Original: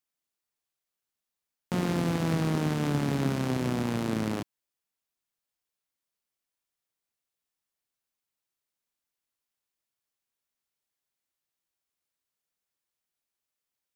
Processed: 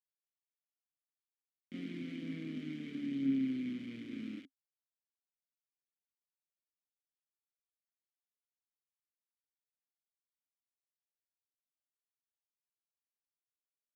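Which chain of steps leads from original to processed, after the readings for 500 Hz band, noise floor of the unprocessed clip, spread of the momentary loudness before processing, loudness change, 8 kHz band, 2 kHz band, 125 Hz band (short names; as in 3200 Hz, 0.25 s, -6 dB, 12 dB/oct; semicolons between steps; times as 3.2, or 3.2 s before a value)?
-20.5 dB, under -85 dBFS, 6 LU, -10.5 dB, under -25 dB, -14.0 dB, -21.0 dB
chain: chorus voices 4, 0.26 Hz, delay 27 ms, depth 5 ms; sample gate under -35 dBFS; vowel filter i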